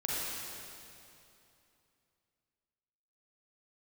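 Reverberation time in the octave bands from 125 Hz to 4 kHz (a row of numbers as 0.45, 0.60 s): 3.1, 3.0, 2.8, 2.8, 2.5, 2.5 s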